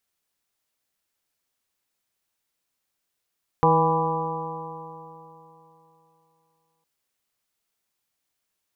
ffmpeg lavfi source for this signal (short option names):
-f lavfi -i "aevalsrc='0.0841*pow(10,-3*t/3.21)*sin(2*PI*160.14*t)+0.0398*pow(10,-3*t/3.21)*sin(2*PI*321.09*t)+0.106*pow(10,-3*t/3.21)*sin(2*PI*483.66*t)+0.0168*pow(10,-3*t/3.21)*sin(2*PI*648.65*t)+0.1*pow(10,-3*t/3.21)*sin(2*PI*816.82*t)+0.119*pow(10,-3*t/3.21)*sin(2*PI*988.94*t)+0.0531*pow(10,-3*t/3.21)*sin(2*PI*1165.72*t)':d=3.21:s=44100"